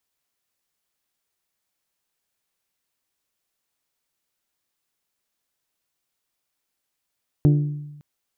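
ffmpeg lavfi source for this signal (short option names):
-f lavfi -i "aevalsrc='0.282*pow(10,-3*t/1.06)*sin(2*PI*147*t)+0.133*pow(10,-3*t/0.653)*sin(2*PI*294*t)+0.0631*pow(10,-3*t/0.574)*sin(2*PI*352.8*t)+0.0299*pow(10,-3*t/0.491)*sin(2*PI*441*t)+0.0141*pow(10,-3*t/0.402)*sin(2*PI*588*t)+0.00668*pow(10,-3*t/0.344)*sin(2*PI*735*t)':d=0.56:s=44100"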